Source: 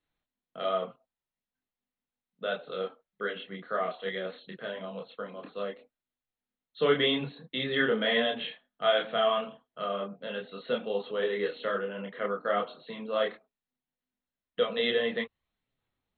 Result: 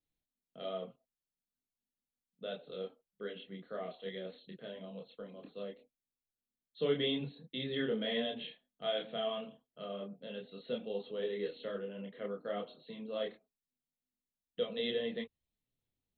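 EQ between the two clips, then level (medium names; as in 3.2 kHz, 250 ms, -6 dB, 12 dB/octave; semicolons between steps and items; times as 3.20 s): peaking EQ 1.3 kHz -14.5 dB 1.8 oct; -3.5 dB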